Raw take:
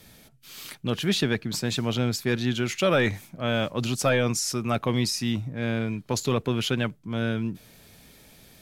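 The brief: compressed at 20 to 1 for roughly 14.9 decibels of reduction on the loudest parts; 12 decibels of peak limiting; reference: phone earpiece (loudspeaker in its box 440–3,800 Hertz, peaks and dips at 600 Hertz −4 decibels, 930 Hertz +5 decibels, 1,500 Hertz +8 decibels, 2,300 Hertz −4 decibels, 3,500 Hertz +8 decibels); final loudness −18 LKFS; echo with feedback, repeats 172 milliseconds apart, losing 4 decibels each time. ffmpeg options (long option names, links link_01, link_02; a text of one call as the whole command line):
ffmpeg -i in.wav -af "acompressor=threshold=-33dB:ratio=20,alimiter=level_in=8dB:limit=-24dB:level=0:latency=1,volume=-8dB,highpass=440,equalizer=frequency=600:width_type=q:width=4:gain=-4,equalizer=frequency=930:width_type=q:width=4:gain=5,equalizer=frequency=1500:width_type=q:width=4:gain=8,equalizer=frequency=2300:width_type=q:width=4:gain=-4,equalizer=frequency=3500:width_type=q:width=4:gain=8,lowpass=frequency=3800:width=0.5412,lowpass=frequency=3800:width=1.3066,aecho=1:1:172|344|516|688|860|1032|1204|1376|1548:0.631|0.398|0.25|0.158|0.0994|0.0626|0.0394|0.0249|0.0157,volume=24.5dB" out.wav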